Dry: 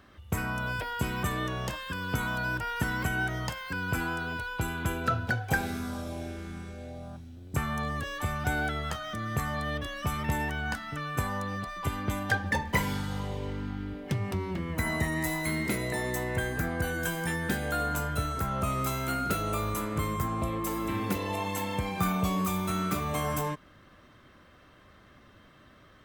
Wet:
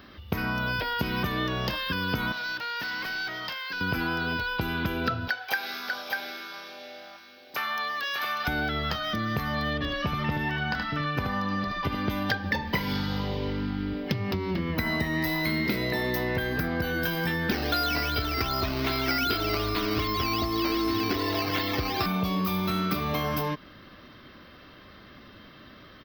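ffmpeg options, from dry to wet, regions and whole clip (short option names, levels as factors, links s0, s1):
-filter_complex "[0:a]asettb=1/sr,asplit=3[s0][s1][s2];[s0]atrim=end=2.324[s3];[s1]atrim=start=2.32:end=3.81,asetpts=PTS-STARTPTS,afade=t=in:d=0.004:c=qsin,afade=t=out:st=1.486:d=0.004:c=qsin,highpass=f=1300:p=1,highshelf=f=6600:g=-8.5,asoftclip=type=hard:threshold=0.0133[s4];[s2]atrim=start=3.806[s5];[s3][s4]acrossfade=d=0.004:c1=hsin:c2=qsin[s6];[s6][s5]acrossfade=d=0.004:c1=qsin:c2=hsin,asettb=1/sr,asplit=3[s7][s8][s9];[s7]atrim=end=5.284[s10];[s8]atrim=start=5.28:end=8.48,asetpts=PTS-STARTPTS,afade=t=in:d=0.004:c=qsin,afade=t=out:st=3.196:d=0.004:c=qsin,highpass=880,aecho=1:1:593:0.447,atrim=end_sample=141120[s11];[s9]atrim=start=8.476[s12];[s10][s11]acrossfade=d=0.004:c1=hsin:c2=qsin[s13];[s13][s12]acrossfade=d=0.004:c1=qsin:c2=hsin,asettb=1/sr,asplit=3[s14][s15][s16];[s14]atrim=end=9.734[s17];[s15]atrim=start=9.73:end=11.95,asetpts=PTS-STARTPTS,afade=t=in:d=0.004:c=qsin,afade=t=out:st=2.216:d=0.004:c=qsin,lowpass=f=3600:p=1,aecho=1:1:75:0.562,atrim=end_sample=97902[s18];[s16]atrim=start=11.946[s19];[s17][s18]acrossfade=d=0.004:c1=hsin:c2=qsin[s20];[s20][s19]acrossfade=d=0.004:c1=qsin:c2=hsin,asettb=1/sr,asplit=3[s21][s22][s23];[s21]atrim=end=17.514[s24];[s22]atrim=start=17.51:end=22.06,asetpts=PTS-STARTPTS,afade=t=in:d=0.004:c=qsin,afade=t=out:st=4.546:d=0.004:c=qsin,aecho=1:1:2.8:0.95,atrim=end_sample=200655,acrusher=samples=10:mix=1:aa=0.000001:lfo=1:lforange=6:lforate=2.6[s25];[s23]atrim=start=22.056[s26];[s24][s25]acrossfade=d=0.004:c1=hsin:c2=qsin[s27];[s27][s26]acrossfade=d=0.004:c1=qsin:c2=hsin,acompressor=threshold=0.0282:ratio=6,firequalizer=gain_entry='entry(110,0);entry(220,5);entry(700,1);entry(5000,10);entry(8000,-27);entry(14000,7)':delay=0.05:min_phase=1,volume=1.58"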